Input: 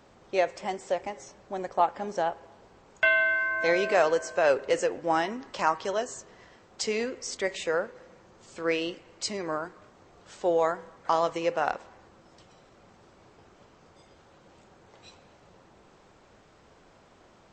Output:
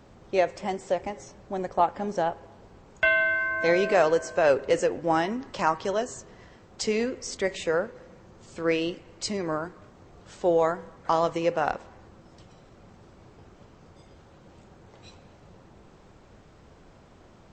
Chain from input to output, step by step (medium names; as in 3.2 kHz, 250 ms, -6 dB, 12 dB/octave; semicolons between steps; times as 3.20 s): bass shelf 270 Hz +10.5 dB